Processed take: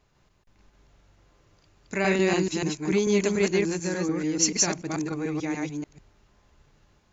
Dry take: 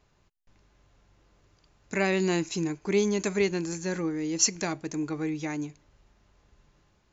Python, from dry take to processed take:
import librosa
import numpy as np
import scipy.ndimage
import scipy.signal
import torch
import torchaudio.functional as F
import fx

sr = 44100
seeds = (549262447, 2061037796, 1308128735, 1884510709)

y = fx.reverse_delay(x, sr, ms=146, wet_db=0)